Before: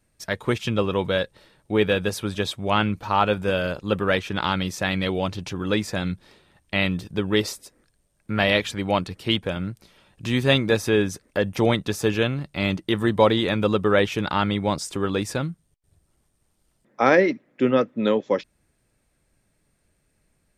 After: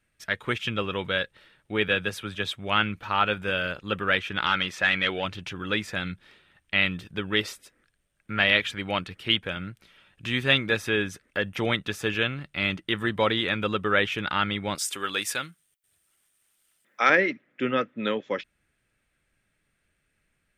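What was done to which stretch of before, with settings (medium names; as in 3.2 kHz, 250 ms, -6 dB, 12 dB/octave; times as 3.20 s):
1.88–2.54 s: three bands expanded up and down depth 40%
4.46–5.25 s: overdrive pedal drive 12 dB, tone 2.7 kHz, clips at -7.5 dBFS
14.75–17.10 s: RIAA curve recording
whole clip: high-order bell 2.1 kHz +9.5 dB; trim -7.5 dB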